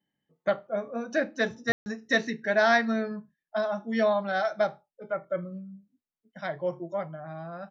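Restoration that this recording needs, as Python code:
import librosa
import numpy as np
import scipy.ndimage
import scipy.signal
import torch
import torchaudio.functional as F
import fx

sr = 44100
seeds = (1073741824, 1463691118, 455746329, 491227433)

y = fx.fix_ambience(x, sr, seeds[0], print_start_s=0.0, print_end_s=0.5, start_s=1.72, end_s=1.86)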